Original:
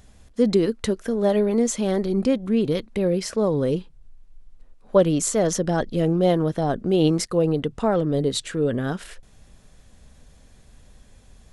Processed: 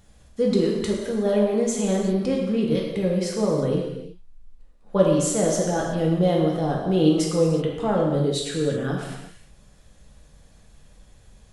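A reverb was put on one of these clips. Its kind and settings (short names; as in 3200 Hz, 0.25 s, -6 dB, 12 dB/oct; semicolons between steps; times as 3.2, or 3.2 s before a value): non-linear reverb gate 0.4 s falling, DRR -2.5 dB; gain -5 dB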